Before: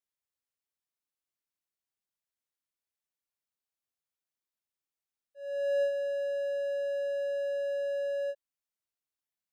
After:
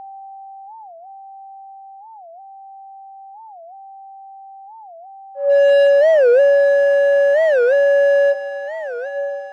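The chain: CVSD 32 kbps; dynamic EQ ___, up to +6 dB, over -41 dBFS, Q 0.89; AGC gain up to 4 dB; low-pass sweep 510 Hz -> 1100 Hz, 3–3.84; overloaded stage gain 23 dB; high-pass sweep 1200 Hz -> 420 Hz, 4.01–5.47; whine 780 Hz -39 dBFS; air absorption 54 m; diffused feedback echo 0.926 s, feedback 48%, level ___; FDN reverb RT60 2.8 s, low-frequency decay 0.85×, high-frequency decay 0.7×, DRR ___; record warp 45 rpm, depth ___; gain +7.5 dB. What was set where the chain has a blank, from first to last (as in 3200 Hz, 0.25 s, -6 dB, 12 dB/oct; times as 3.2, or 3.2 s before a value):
570 Hz, -11 dB, 11 dB, 250 cents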